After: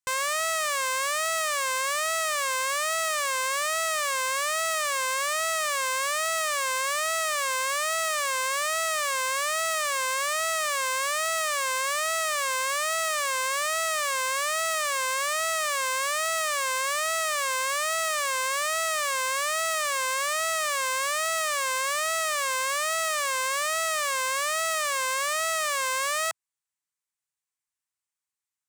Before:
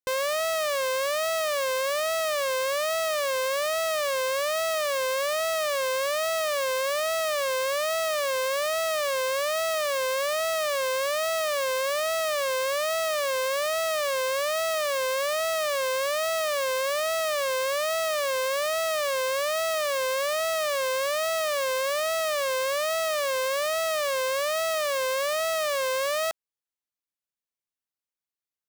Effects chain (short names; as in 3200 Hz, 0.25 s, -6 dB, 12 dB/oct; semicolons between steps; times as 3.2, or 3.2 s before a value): graphic EQ 125/250/500/1000/2000/8000 Hz +6/-6/-7/+7/+6/+12 dB; gain -4 dB